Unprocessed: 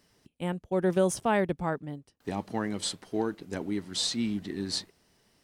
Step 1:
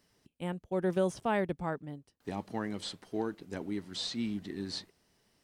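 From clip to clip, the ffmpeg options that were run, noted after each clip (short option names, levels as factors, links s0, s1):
-filter_complex "[0:a]acrossover=split=5100[s0][s1];[s1]acompressor=threshold=0.00501:ratio=4:attack=1:release=60[s2];[s0][s2]amix=inputs=2:normalize=0,volume=0.596"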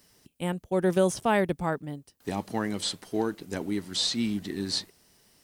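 -af "crystalizer=i=1.5:c=0,volume=2"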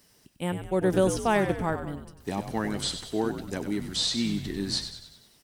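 -filter_complex "[0:a]asplit=7[s0][s1][s2][s3][s4][s5][s6];[s1]adelay=96,afreqshift=-70,volume=0.355[s7];[s2]adelay=192,afreqshift=-140,volume=0.184[s8];[s3]adelay=288,afreqshift=-210,volume=0.0955[s9];[s4]adelay=384,afreqshift=-280,volume=0.0501[s10];[s5]adelay=480,afreqshift=-350,volume=0.026[s11];[s6]adelay=576,afreqshift=-420,volume=0.0135[s12];[s0][s7][s8][s9][s10][s11][s12]amix=inputs=7:normalize=0"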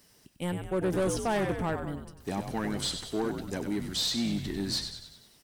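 -af "asoftclip=type=tanh:threshold=0.0708"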